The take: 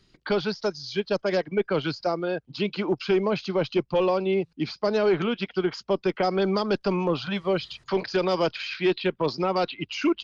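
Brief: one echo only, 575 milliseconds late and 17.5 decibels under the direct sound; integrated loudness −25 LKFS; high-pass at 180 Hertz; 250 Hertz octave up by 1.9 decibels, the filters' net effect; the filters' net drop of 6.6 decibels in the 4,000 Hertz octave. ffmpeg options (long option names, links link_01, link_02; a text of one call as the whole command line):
ffmpeg -i in.wav -af "highpass=180,equalizer=frequency=250:width_type=o:gain=5,equalizer=frequency=4000:width_type=o:gain=-9,aecho=1:1:575:0.133" out.wav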